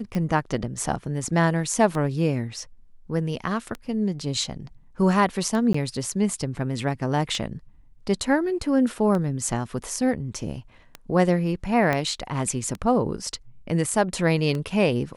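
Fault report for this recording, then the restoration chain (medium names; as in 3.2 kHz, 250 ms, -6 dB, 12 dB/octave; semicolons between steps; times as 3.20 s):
tick 33 1/3 rpm -17 dBFS
5.73–5.74 s: dropout 14 ms
11.93 s: pop -11 dBFS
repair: de-click; interpolate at 5.73 s, 14 ms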